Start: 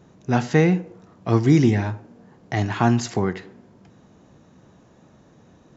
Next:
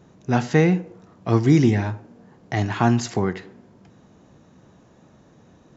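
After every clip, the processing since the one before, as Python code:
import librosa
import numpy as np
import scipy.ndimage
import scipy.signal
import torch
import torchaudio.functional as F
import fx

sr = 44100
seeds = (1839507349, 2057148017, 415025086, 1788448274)

y = x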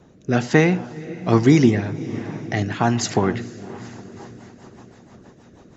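y = fx.echo_diffused(x, sr, ms=472, feedback_pct=54, wet_db=-14.0)
y = fx.rotary_switch(y, sr, hz=1.2, then_hz=6.3, switch_at_s=3.72)
y = fx.hpss(y, sr, part='harmonic', gain_db=-8)
y = F.gain(torch.from_numpy(y), 8.0).numpy()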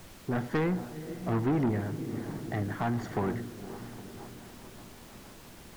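y = scipy.signal.savgol_filter(x, 41, 4, mode='constant')
y = fx.dmg_noise_colour(y, sr, seeds[0], colour='pink', level_db=-44.0)
y = 10.0 ** (-16.5 / 20.0) * np.tanh(y / 10.0 ** (-16.5 / 20.0))
y = F.gain(torch.from_numpy(y), -7.0).numpy()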